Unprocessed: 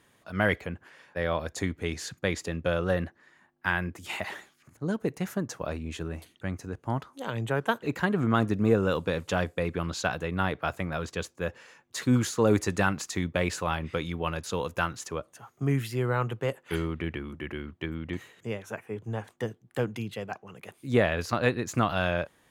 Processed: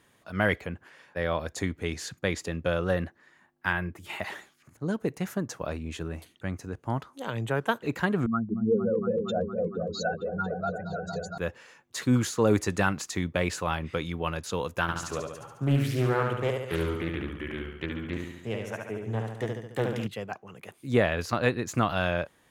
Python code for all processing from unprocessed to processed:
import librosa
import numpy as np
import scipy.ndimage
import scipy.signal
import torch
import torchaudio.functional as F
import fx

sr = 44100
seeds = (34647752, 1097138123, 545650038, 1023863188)

y = fx.chain(x, sr, fx.peak_eq(hz=6300.0, db=-7.0, octaves=1.4),
    fx.notch_comb(f0_hz=250.0), at=(3.73, 4.2))
y = fx.chain(y, sr, fx.spec_expand(power=3.5),
    fx.highpass(hz=260.0, slope=6),
    fx.echo_opening(ms=231, hz=400, octaves=1, feedback_pct=70, wet_db=-3), at=(8.26, 11.38))
y = fx.chain(y, sr, fx.echo_feedback(ms=71, feedback_pct=57, wet_db=-4.0),
    fx.doppler_dist(depth_ms=0.53), at=(14.81, 20.07))